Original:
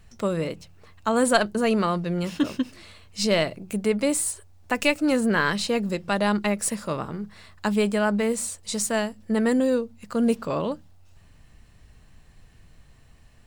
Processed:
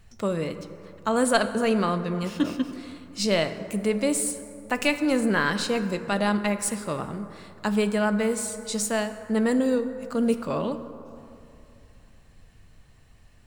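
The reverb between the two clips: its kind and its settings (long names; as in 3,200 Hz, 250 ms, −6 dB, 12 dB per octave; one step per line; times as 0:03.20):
dense smooth reverb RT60 2.8 s, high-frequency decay 0.4×, DRR 9.5 dB
level −1.5 dB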